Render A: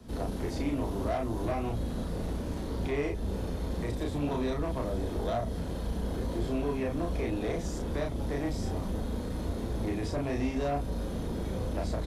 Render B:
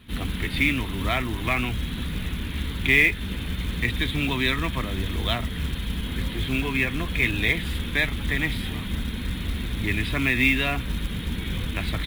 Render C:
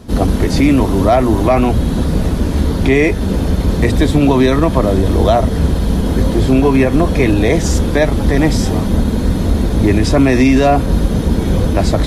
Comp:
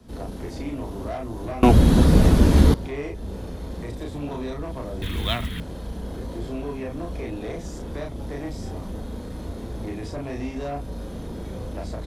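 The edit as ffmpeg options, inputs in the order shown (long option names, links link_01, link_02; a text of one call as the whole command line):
ffmpeg -i take0.wav -i take1.wav -i take2.wav -filter_complex "[0:a]asplit=3[link_01][link_02][link_03];[link_01]atrim=end=1.632[link_04];[2:a]atrim=start=1.628:end=2.742[link_05];[link_02]atrim=start=2.738:end=5.022[link_06];[1:a]atrim=start=5.018:end=5.602[link_07];[link_03]atrim=start=5.598[link_08];[link_04][link_05]acrossfade=duration=0.004:curve1=hsin:curve2=hsin[link_09];[link_09][link_06]acrossfade=duration=0.004:curve1=hsin:curve2=hsin[link_10];[link_10][link_07]acrossfade=duration=0.004:curve1=hsin:curve2=hsin[link_11];[link_11][link_08]acrossfade=duration=0.004:curve1=hsin:curve2=hsin" out.wav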